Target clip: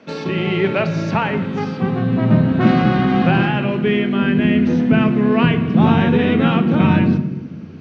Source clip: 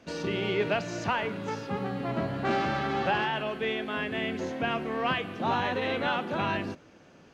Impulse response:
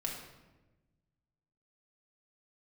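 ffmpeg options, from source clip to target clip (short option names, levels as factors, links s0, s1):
-filter_complex "[0:a]asetrate=41454,aresample=44100,highpass=180,lowpass=4500,asplit=2[s0][s1];[1:a]atrim=start_sample=2205,lowshelf=f=410:g=9.5[s2];[s1][s2]afir=irnorm=-1:irlink=0,volume=0.398[s3];[s0][s3]amix=inputs=2:normalize=0,asubboost=boost=7:cutoff=240,volume=2.11"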